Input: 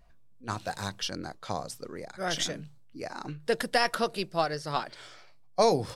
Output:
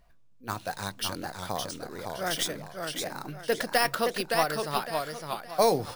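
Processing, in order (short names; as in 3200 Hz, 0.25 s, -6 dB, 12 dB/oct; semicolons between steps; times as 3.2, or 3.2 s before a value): low shelf 320 Hz -3.5 dB; sample-and-hold 3×; warbling echo 0.564 s, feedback 30%, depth 133 cents, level -4.5 dB; gain +1 dB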